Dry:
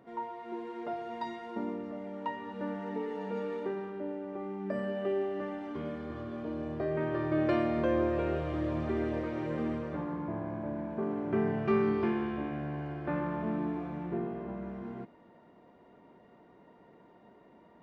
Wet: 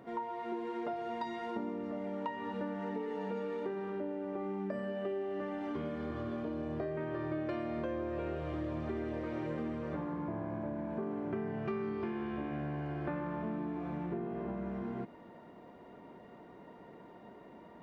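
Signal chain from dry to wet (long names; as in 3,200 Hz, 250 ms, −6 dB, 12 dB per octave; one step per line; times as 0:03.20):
downward compressor, threshold −40 dBFS, peak gain reduction 15.5 dB
level +5 dB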